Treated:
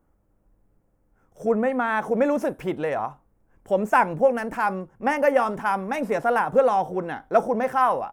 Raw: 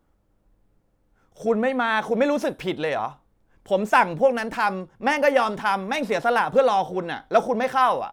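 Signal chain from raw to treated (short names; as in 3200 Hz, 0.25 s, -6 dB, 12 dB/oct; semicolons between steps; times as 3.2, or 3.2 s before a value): bell 3900 Hz -15 dB 1.1 oct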